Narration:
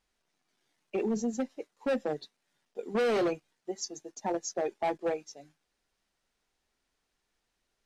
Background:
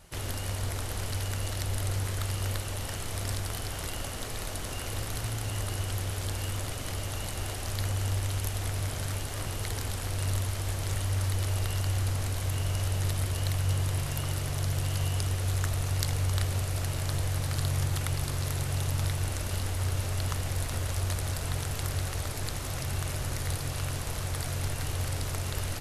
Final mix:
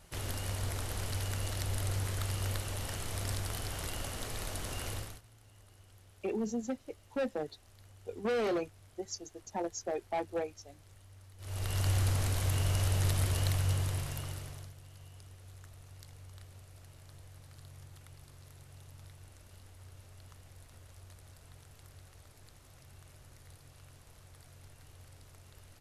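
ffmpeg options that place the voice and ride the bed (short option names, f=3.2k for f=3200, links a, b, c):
-filter_complex "[0:a]adelay=5300,volume=-4dB[a];[1:a]volume=23dB,afade=t=out:st=4.89:d=0.32:silence=0.0668344,afade=t=in:st=11.38:d=0.49:silence=0.0473151,afade=t=out:st=13.35:d=1.39:silence=0.0707946[b];[a][b]amix=inputs=2:normalize=0"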